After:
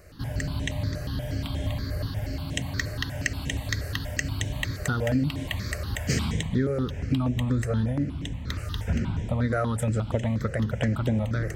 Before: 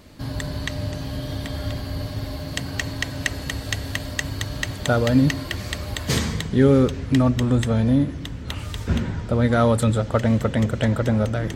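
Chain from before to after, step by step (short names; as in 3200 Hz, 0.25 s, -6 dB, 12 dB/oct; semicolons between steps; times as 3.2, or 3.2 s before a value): compressor 12:1, threshold -19 dBFS, peak gain reduction 9.5 dB; step phaser 8.4 Hz 930–4500 Hz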